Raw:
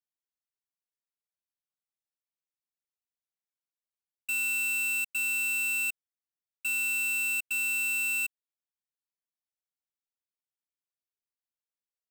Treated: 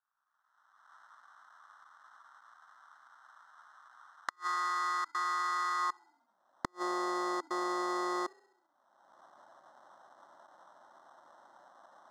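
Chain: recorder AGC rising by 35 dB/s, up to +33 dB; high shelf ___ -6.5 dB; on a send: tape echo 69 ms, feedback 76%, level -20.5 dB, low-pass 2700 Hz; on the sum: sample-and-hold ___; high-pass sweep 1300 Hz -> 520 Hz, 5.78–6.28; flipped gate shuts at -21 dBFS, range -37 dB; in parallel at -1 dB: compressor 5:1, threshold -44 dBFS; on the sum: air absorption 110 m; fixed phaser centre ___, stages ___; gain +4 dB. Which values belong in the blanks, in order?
6500 Hz, 19×, 1100 Hz, 4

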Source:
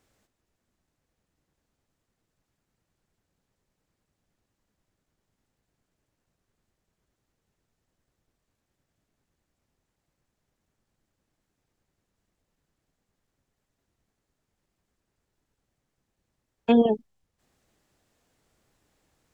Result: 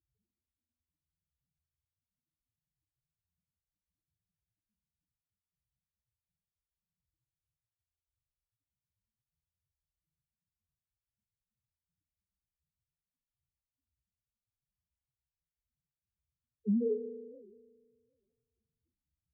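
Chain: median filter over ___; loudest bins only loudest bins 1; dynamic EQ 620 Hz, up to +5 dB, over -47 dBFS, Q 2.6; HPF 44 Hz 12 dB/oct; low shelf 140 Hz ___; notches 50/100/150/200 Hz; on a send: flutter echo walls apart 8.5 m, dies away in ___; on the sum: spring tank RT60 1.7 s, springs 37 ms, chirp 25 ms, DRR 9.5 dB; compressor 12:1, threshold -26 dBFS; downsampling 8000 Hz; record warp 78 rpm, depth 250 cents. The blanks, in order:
15 samples, -2 dB, 0.29 s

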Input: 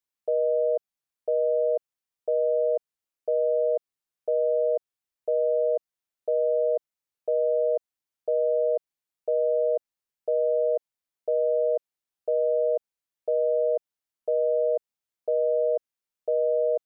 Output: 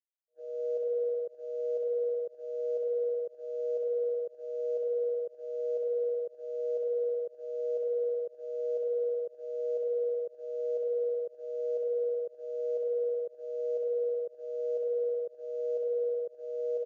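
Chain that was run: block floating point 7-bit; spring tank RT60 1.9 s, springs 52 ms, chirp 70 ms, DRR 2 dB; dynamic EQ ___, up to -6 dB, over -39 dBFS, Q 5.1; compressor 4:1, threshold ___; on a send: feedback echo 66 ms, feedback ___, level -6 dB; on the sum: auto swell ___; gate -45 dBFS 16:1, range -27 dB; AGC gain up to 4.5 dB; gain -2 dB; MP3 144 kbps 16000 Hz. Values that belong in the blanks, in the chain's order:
640 Hz, -27 dBFS, 39%, 0.748 s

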